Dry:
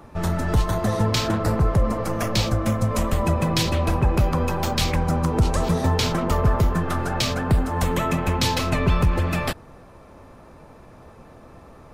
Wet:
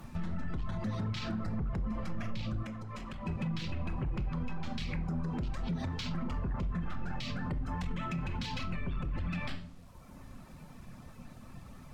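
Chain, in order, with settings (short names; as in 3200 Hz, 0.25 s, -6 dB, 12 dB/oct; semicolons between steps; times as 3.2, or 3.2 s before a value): EQ curve 250 Hz 0 dB, 370 Hz -13 dB, 2600 Hz -1 dB; hard clip -18.5 dBFS, distortion -11 dB; compressor, threshold -27 dBFS, peak gain reduction 7 dB; reverb removal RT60 1.2 s; shoebox room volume 870 m³, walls furnished, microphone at 0.99 m; limiter -27.5 dBFS, peak gain reduction 10 dB; careless resampling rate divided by 2×, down filtered, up zero stuff; requantised 10-bit, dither none; treble ducked by the level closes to 2700 Hz, closed at -25.5 dBFS; 2.63–3.26 low shelf 320 Hz -9.5 dB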